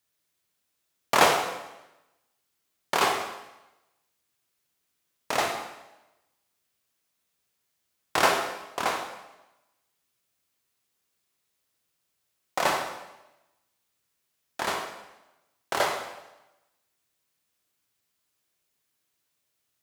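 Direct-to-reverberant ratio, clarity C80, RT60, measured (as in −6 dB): 3.0 dB, 7.5 dB, 1.0 s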